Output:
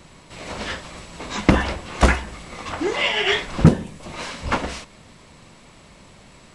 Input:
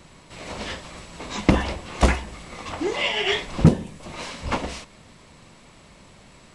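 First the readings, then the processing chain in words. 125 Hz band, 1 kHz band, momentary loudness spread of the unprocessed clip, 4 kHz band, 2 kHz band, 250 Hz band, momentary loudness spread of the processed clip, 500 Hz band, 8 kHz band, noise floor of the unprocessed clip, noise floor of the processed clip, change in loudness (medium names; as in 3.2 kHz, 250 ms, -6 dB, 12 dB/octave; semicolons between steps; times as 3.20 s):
+2.0 dB, +3.5 dB, 18 LU, +2.5 dB, +4.5 dB, +2.0 dB, 18 LU, +2.0 dB, +2.0 dB, -50 dBFS, -48 dBFS, +2.5 dB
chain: dynamic bell 1.5 kHz, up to +6 dB, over -44 dBFS, Q 2.4; trim +2 dB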